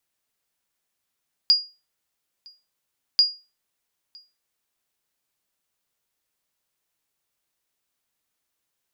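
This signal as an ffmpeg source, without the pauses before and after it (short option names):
-f lavfi -i "aevalsrc='0.355*(sin(2*PI*4850*mod(t,1.69))*exp(-6.91*mod(t,1.69)/0.29)+0.0335*sin(2*PI*4850*max(mod(t,1.69)-0.96,0))*exp(-6.91*max(mod(t,1.69)-0.96,0)/0.29))':d=3.38:s=44100"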